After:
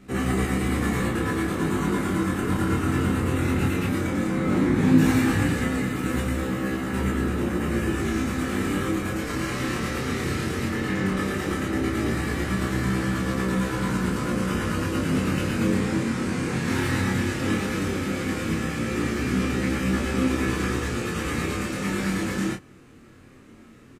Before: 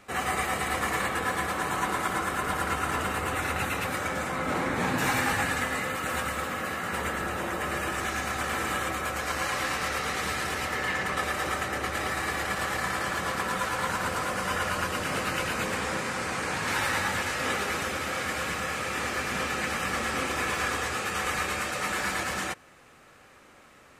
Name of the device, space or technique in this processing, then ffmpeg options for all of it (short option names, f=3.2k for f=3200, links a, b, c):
double-tracked vocal: -filter_complex "[0:a]lowshelf=f=440:t=q:w=1.5:g=12.5,asplit=2[a][b];[b]adelay=31,volume=-4.5dB[c];[a][c]amix=inputs=2:normalize=0,flanger=delay=15.5:depth=7.2:speed=0.15"